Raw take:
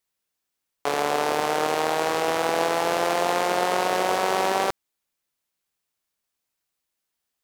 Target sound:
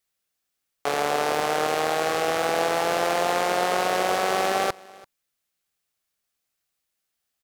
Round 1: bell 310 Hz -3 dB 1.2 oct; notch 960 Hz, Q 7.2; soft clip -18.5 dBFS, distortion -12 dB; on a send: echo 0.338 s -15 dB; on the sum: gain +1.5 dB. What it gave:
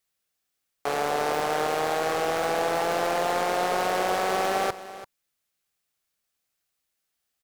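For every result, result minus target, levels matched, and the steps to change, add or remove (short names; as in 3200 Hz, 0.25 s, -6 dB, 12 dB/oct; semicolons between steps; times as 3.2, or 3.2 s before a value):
soft clip: distortion +13 dB; echo-to-direct +8 dB
change: soft clip -9 dBFS, distortion -25 dB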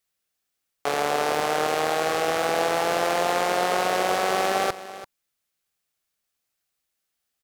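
echo-to-direct +8 dB
change: echo 0.338 s -23 dB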